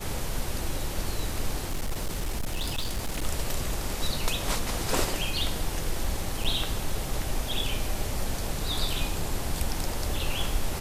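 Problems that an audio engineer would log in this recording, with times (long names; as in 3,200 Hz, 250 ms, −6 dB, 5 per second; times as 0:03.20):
0:01.64–0:03.25: clipping −25 dBFS
0:06.44–0:06.45: drop-out 6.4 ms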